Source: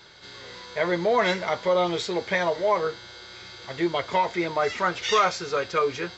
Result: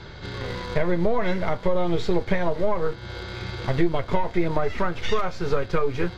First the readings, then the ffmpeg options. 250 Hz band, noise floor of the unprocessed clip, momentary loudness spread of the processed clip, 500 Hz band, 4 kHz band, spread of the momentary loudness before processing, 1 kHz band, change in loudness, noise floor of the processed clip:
+4.5 dB, -45 dBFS, 8 LU, -0.5 dB, -5.5 dB, 19 LU, -4.0 dB, -1.5 dB, -40 dBFS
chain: -filter_complex "[0:a]asplit=2[s0][s1];[s1]acrusher=bits=3:dc=4:mix=0:aa=0.000001,volume=0.631[s2];[s0][s2]amix=inputs=2:normalize=0,acompressor=threshold=0.0224:ratio=6,aemphasis=mode=reproduction:type=riaa,volume=2.66"

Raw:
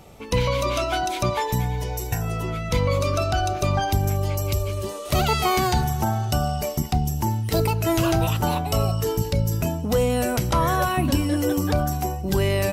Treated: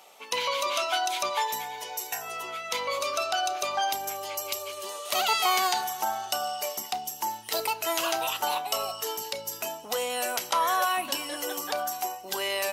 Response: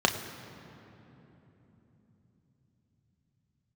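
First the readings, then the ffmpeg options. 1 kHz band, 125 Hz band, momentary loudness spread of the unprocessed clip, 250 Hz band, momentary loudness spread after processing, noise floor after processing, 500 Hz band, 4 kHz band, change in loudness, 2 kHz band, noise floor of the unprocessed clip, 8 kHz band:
-2.0 dB, under -35 dB, 5 LU, -20.0 dB, 8 LU, -43 dBFS, -8.0 dB, +1.5 dB, -5.5 dB, -1.0 dB, -32 dBFS, +0.5 dB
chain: -filter_complex "[0:a]highpass=940,asplit=2[s0][s1];[1:a]atrim=start_sample=2205,atrim=end_sample=3969[s2];[s1][s2]afir=irnorm=-1:irlink=0,volume=0.0668[s3];[s0][s3]amix=inputs=2:normalize=0"

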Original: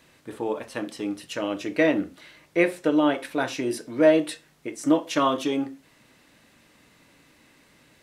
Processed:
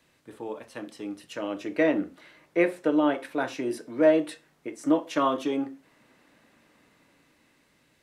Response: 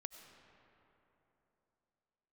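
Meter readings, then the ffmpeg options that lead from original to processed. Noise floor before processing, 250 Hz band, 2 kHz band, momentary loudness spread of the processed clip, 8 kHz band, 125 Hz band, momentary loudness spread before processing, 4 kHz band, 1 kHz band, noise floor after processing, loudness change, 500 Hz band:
-59 dBFS, -2.5 dB, -4.0 dB, 16 LU, -8.0 dB, -5.5 dB, 14 LU, -7.0 dB, -2.5 dB, -66 dBFS, -2.5 dB, -2.0 dB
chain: -filter_complex "[0:a]acrossover=split=180|2100[s0][s1][s2];[s1]dynaudnorm=f=340:g=9:m=3.76[s3];[s0][s3][s2]amix=inputs=3:normalize=0,volume=0.398"

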